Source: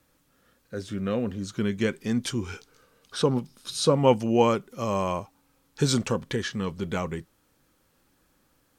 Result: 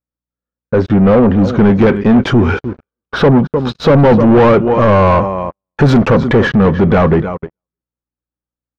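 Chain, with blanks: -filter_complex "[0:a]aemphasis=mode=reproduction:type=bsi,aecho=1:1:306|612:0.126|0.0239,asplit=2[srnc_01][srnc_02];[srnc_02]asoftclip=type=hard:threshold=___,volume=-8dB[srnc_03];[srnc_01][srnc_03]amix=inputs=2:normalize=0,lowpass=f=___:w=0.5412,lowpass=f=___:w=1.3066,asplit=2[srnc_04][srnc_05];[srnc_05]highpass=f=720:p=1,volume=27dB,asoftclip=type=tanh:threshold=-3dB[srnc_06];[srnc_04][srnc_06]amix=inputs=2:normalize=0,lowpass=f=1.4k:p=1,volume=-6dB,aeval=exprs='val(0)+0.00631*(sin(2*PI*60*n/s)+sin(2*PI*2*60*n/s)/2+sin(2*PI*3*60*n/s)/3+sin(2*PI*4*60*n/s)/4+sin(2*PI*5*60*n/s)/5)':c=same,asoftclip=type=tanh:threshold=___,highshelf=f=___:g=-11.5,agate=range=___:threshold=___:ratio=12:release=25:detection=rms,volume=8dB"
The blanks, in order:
-20.5dB, 7.1k, 7.1k, -11.5dB, 2.6k, -55dB, -31dB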